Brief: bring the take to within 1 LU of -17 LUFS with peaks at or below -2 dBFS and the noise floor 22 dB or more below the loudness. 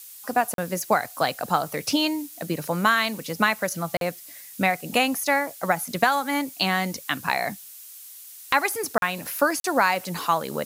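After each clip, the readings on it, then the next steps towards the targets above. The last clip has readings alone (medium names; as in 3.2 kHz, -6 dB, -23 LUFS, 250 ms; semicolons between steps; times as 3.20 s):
dropouts 4; longest dropout 42 ms; noise floor -44 dBFS; noise floor target -47 dBFS; loudness -24.5 LUFS; peak level -6.0 dBFS; loudness target -17.0 LUFS
-> interpolate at 0.54/3.97/8.98/9.60 s, 42 ms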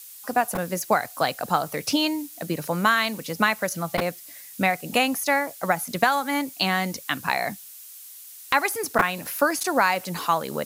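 dropouts 0; noise floor -44 dBFS; noise floor target -47 dBFS
-> noise reduction 6 dB, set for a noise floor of -44 dBFS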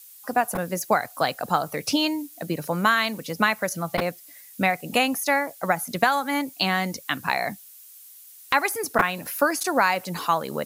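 noise floor -47 dBFS; loudness -24.5 LUFS; peak level -4.5 dBFS; loudness target -17.0 LUFS
-> trim +7.5 dB; peak limiter -2 dBFS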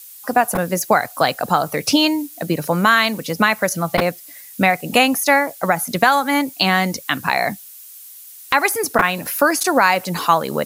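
loudness -17.5 LUFS; peak level -2.0 dBFS; noise floor -40 dBFS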